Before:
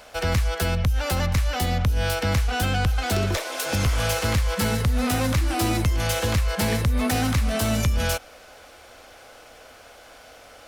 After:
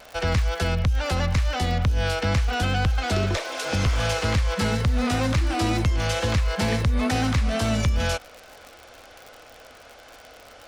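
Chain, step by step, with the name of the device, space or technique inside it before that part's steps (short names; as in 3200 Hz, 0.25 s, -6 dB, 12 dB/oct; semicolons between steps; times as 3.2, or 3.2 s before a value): lo-fi chain (LPF 6500 Hz 12 dB/oct; wow and flutter 26 cents; crackle 75/s -32 dBFS)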